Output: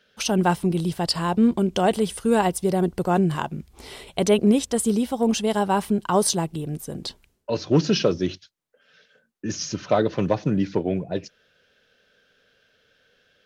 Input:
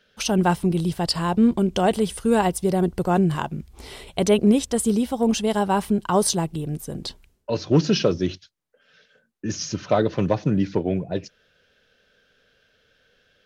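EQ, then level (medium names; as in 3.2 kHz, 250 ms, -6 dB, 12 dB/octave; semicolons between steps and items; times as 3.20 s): bass shelf 78 Hz -8.5 dB; 0.0 dB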